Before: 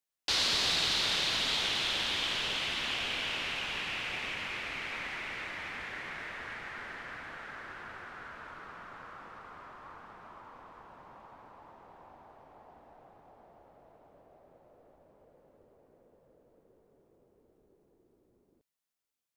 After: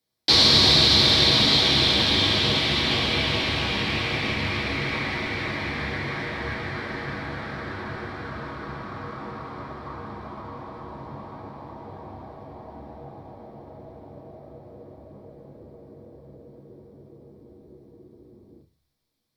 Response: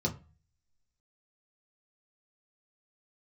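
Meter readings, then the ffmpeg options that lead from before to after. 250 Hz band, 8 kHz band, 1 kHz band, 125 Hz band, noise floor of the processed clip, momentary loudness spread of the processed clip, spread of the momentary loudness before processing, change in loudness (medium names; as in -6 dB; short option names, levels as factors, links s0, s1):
+20.0 dB, +6.0 dB, +10.5 dB, +23.0 dB, -64 dBFS, 23 LU, 22 LU, +12.0 dB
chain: -filter_complex "[1:a]atrim=start_sample=2205,asetrate=39690,aresample=44100[s0];[0:a][s0]afir=irnorm=-1:irlink=0,volume=1.88"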